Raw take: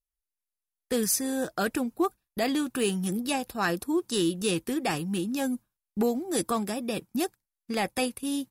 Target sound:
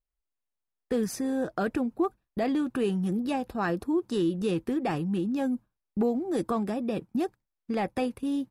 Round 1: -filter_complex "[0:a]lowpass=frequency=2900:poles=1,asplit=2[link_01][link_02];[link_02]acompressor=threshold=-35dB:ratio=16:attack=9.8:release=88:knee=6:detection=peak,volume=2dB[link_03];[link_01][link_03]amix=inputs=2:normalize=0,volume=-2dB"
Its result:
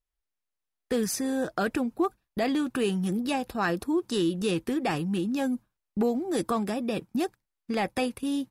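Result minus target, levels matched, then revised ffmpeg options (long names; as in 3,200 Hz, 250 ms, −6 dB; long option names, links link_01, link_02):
4,000 Hz band +6.5 dB
-filter_complex "[0:a]lowpass=frequency=1000:poles=1,asplit=2[link_01][link_02];[link_02]acompressor=threshold=-35dB:ratio=16:attack=9.8:release=88:knee=6:detection=peak,volume=2dB[link_03];[link_01][link_03]amix=inputs=2:normalize=0,volume=-2dB"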